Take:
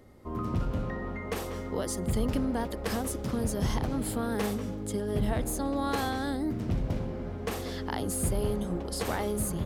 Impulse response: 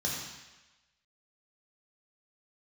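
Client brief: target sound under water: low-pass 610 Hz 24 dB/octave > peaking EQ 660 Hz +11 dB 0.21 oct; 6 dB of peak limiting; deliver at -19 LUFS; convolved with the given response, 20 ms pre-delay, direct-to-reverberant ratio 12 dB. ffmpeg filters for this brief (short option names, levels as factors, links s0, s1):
-filter_complex "[0:a]alimiter=level_in=1.06:limit=0.0631:level=0:latency=1,volume=0.944,asplit=2[s0][s1];[1:a]atrim=start_sample=2205,adelay=20[s2];[s1][s2]afir=irnorm=-1:irlink=0,volume=0.133[s3];[s0][s3]amix=inputs=2:normalize=0,lowpass=f=610:w=0.5412,lowpass=f=610:w=1.3066,equalizer=f=660:t=o:w=0.21:g=11,volume=5.96"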